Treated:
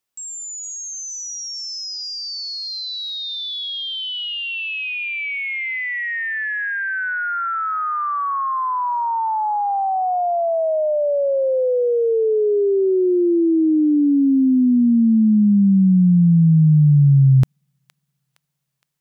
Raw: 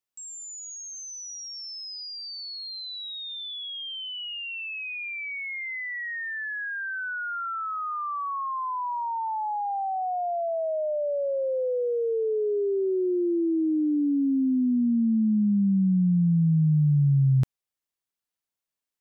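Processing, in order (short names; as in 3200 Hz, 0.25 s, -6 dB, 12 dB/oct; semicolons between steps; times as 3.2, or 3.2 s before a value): thin delay 0.465 s, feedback 47%, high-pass 1800 Hz, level -13 dB; gain +8.5 dB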